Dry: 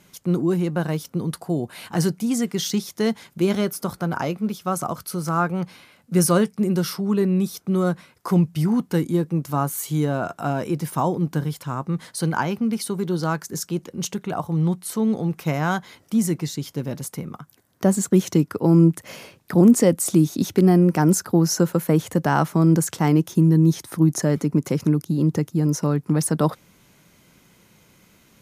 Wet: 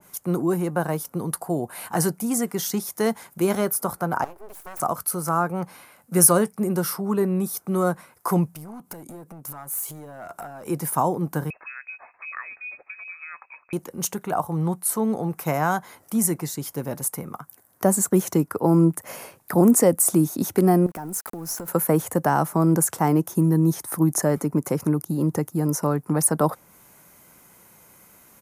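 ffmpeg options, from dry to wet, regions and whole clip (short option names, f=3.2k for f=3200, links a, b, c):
-filter_complex "[0:a]asettb=1/sr,asplit=3[a][b][c];[a]atrim=end=4.244[d];[b]atrim=start=4.24:end=4.8,asetpts=PTS-STARTPTS,afade=t=in:d=0.004:c=qsin,afade=t=out:st=0.556:d=0.004:c=qsin,acompressor=threshold=-39dB:ratio=3:attack=3.2:release=140:knee=1:detection=peak,aeval=exprs='abs(val(0))':c=same[e];[c]atrim=start=4.796[f];[d][e]acrossfade=d=0.004:c1=hsin:c2=qsin[g];[g][f]acrossfade=d=0.004:c1=qsin:c2=hsin,asettb=1/sr,asplit=3[h][i][j];[h]atrim=end=8.544[k];[i]atrim=start=8.54:end=10.68,asetpts=PTS-STARTPTS,afade=t=in:d=0.004:c=qsin,afade=t=out:st=2.136:d=0.004:c=qsin,bandreject=f=1.8k:w=6.7,acompressor=threshold=-33dB:ratio=8:attack=3.2:release=140:knee=1:detection=peak,aeval=exprs='clip(val(0),-1,0.0158)':c=same[l];[j]atrim=start=10.676[m];[k][l]acrossfade=d=0.004:c1=hsin:c2=qsin[n];[n][m]acrossfade=d=0.004:c1=qsin:c2=hsin,asettb=1/sr,asplit=3[o][p][q];[o]atrim=end=11.504[r];[p]atrim=start=11.5:end=13.73,asetpts=PTS-STARTPTS,afade=t=in:d=0.004:c=qsin,afade=t=out:st=2.226:d=0.004:c=qsin,acompressor=threshold=-30dB:ratio=5:attack=3.2:release=140:knee=1:detection=peak,acrossover=split=590[s][t];[s]aeval=exprs='val(0)*(1-0.7/2+0.7/2*cos(2*PI*5.1*n/s))':c=same[u];[t]aeval=exprs='val(0)*(1-0.7/2-0.7/2*cos(2*PI*5.1*n/s))':c=same[v];[u][v]amix=inputs=2:normalize=0,lowpass=f=2.3k:t=q:w=0.5098,lowpass=f=2.3k:t=q:w=0.6013,lowpass=f=2.3k:t=q:w=0.9,lowpass=f=2.3k:t=q:w=2.563,afreqshift=-2700[w];[q]atrim=start=13.726[x];[r][w]acrossfade=d=0.004:c1=hsin:c2=qsin[y];[y][x]acrossfade=d=0.004:c1=qsin:c2=hsin,asettb=1/sr,asplit=3[z][aa][ab];[z]atrim=end=20.864[ac];[aa]atrim=start=20.86:end=21.68,asetpts=PTS-STARTPTS,afade=t=in:d=0.004:c=qsin,afade=t=out:st=0.816:d=0.004:c=qsin,aeval=exprs='val(0)*gte(abs(val(0)),0.0211)':c=same,acompressor=threshold=-25dB:ratio=8:attack=3.2:release=140:knee=1:detection=peak,aeval=exprs='(tanh(5.62*val(0)+0.6)-tanh(0.6))/5.62':c=same[ad];[ab]atrim=start=21.676[ae];[ac][ad]acrossfade=d=0.004:c1=hsin:c2=qsin[af];[af][ae]acrossfade=d=0.004:c1=qsin:c2=hsin,firequalizer=gain_entry='entry(180,0);entry(780,10);entry(3300,-2);entry(10000,15)':delay=0.05:min_phase=1,acrossover=split=500|3000[ag][ah][ai];[ah]acompressor=threshold=-15dB:ratio=6[aj];[ag][aj][ai]amix=inputs=3:normalize=0,adynamicequalizer=threshold=0.0178:dfrequency=1700:dqfactor=0.7:tfrequency=1700:tqfactor=0.7:attack=5:release=100:ratio=0.375:range=2:mode=cutabove:tftype=highshelf,volume=-4dB"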